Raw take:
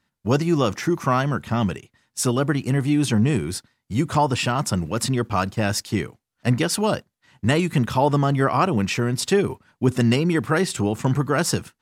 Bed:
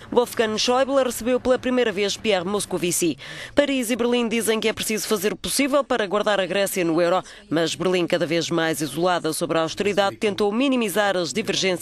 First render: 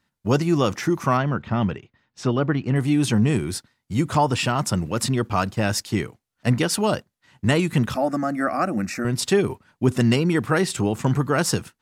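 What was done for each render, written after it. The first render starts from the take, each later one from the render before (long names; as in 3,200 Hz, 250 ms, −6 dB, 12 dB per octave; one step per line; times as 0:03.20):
0:01.17–0:02.76: high-frequency loss of the air 200 metres
0:07.94–0:09.05: phaser with its sweep stopped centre 640 Hz, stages 8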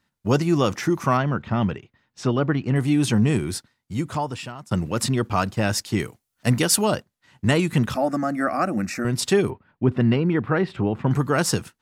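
0:03.51–0:04.71: fade out, to −24 dB
0:05.99–0:06.84: high-shelf EQ 6,500 Hz +11 dB
0:09.50–0:11.11: high-frequency loss of the air 390 metres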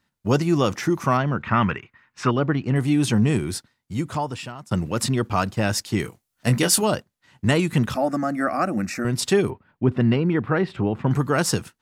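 0:01.43–0:02.31: flat-topped bell 1,600 Hz +11 dB
0:06.02–0:06.83: double-tracking delay 22 ms −8 dB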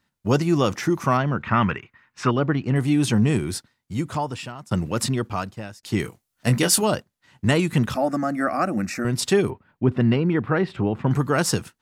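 0:05.01–0:05.83: fade out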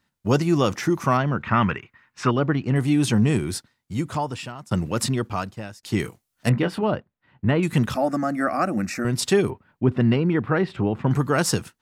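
0:06.49–0:07.63: high-frequency loss of the air 460 metres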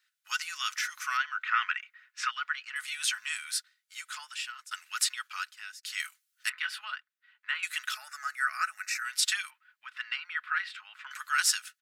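elliptic high-pass filter 1,400 Hz, stop band 70 dB
comb filter 4.7 ms, depth 36%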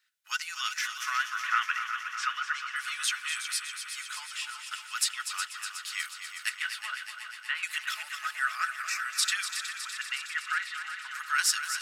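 echo machine with several playback heads 122 ms, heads second and third, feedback 69%, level −9.5 dB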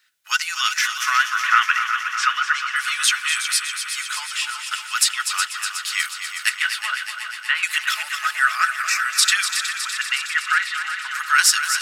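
level +11.5 dB
brickwall limiter −3 dBFS, peak gain reduction 3 dB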